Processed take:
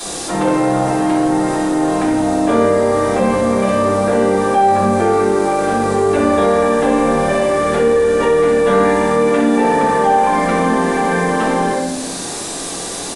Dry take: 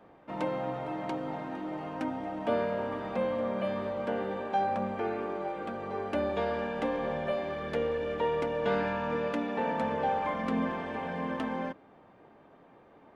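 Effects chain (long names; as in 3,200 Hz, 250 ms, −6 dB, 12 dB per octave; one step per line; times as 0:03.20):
high-shelf EQ 4,400 Hz −9.5 dB
background noise violet −43 dBFS
thirty-one-band graphic EQ 125 Hz −5 dB, 800 Hz +3 dB, 1,600 Hz +4 dB, 4,000 Hz +4 dB
on a send: flutter between parallel walls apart 10.5 metres, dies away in 0.55 s
on the sum: downsampling to 22,050 Hz
rectangular room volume 80 cubic metres, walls mixed, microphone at 3.2 metres
envelope flattener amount 50%
level −1 dB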